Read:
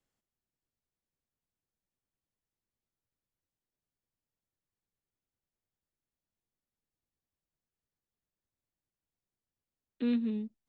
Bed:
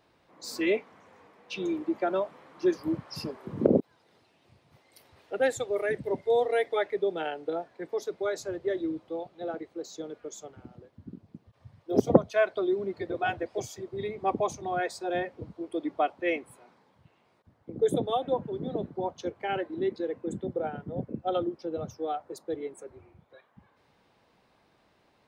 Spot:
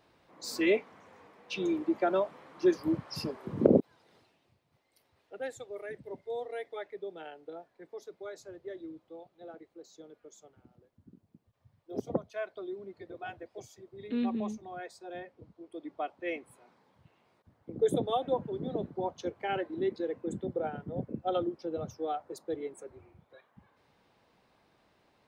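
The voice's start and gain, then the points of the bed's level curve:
4.10 s, -1.5 dB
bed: 4.19 s 0 dB
4.61 s -12.5 dB
15.58 s -12.5 dB
16.99 s -2 dB

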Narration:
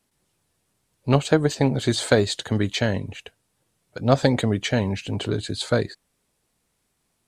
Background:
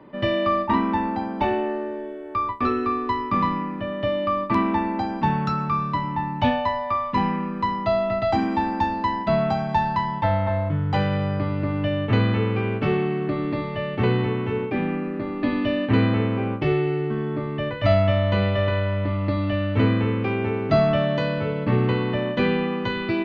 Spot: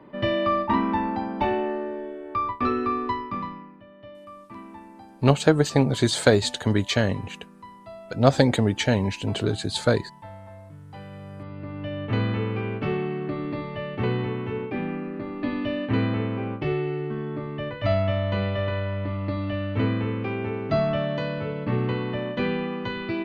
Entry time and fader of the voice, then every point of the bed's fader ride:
4.15 s, +0.5 dB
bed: 3.06 s -1.5 dB
3.85 s -20.5 dB
10.88 s -20.5 dB
12.20 s -4.5 dB

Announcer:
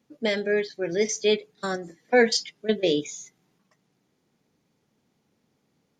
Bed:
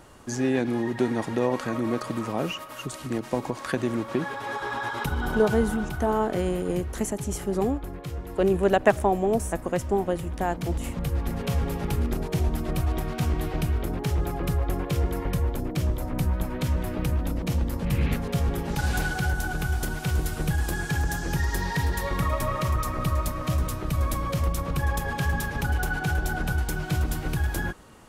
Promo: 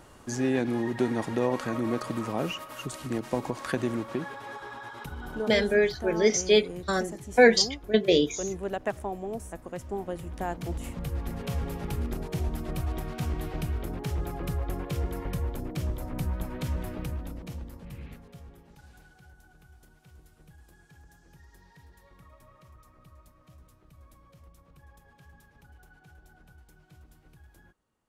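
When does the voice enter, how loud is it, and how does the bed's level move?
5.25 s, +1.5 dB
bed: 3.85 s -2 dB
4.80 s -11.5 dB
9.70 s -11.5 dB
10.42 s -5.5 dB
16.84 s -5.5 dB
18.98 s -29 dB

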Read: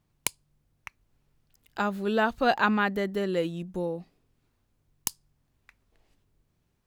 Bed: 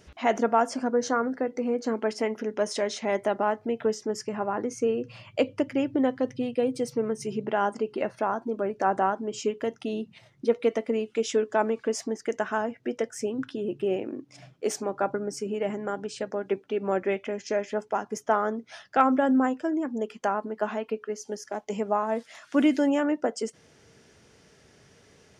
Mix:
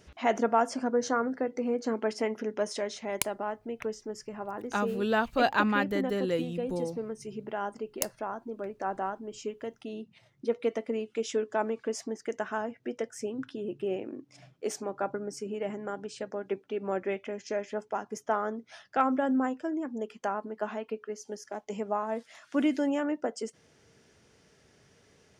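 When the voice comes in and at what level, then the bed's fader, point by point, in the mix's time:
2.95 s, -2.0 dB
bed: 2.48 s -2.5 dB
3.21 s -8.5 dB
9.94 s -8.5 dB
10.64 s -5 dB

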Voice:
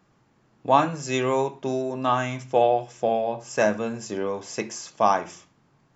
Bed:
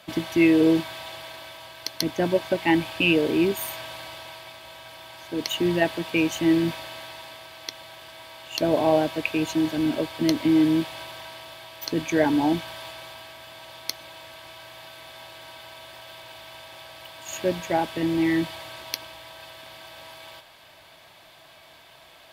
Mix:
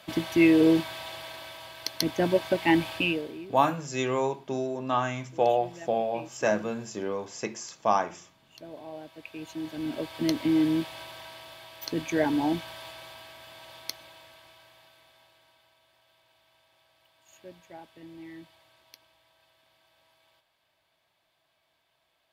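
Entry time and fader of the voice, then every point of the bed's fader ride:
2.85 s, -4.0 dB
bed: 2.95 s -1.5 dB
3.46 s -22 dB
8.92 s -22 dB
10.18 s -4.5 dB
13.77 s -4.5 dB
15.79 s -22.5 dB

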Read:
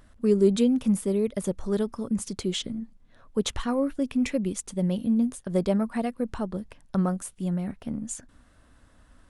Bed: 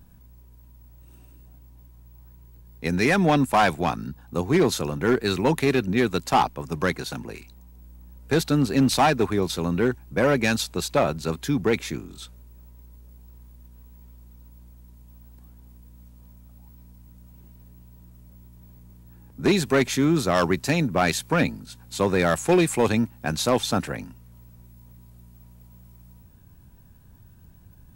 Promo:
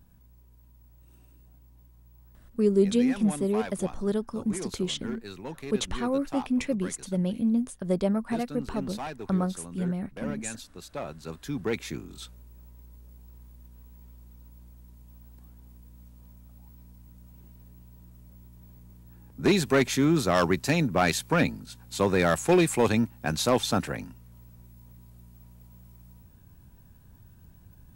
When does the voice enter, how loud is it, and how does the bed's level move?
2.35 s, -1.5 dB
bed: 2.45 s -6 dB
2.77 s -17.5 dB
10.75 s -17.5 dB
12.17 s -2 dB

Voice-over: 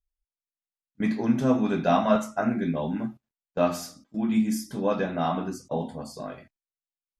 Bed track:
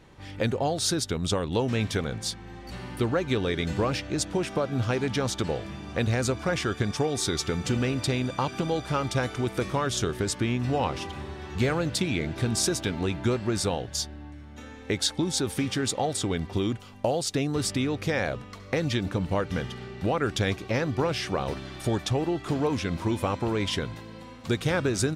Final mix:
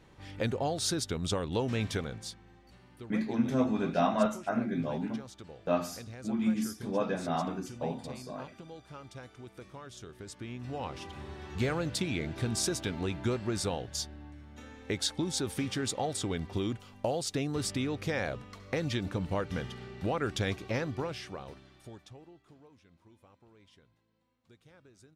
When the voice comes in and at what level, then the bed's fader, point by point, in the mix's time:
2.10 s, -5.5 dB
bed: 1.94 s -5 dB
2.81 s -20 dB
10.03 s -20 dB
11.33 s -5.5 dB
20.76 s -5.5 dB
22.75 s -33.5 dB

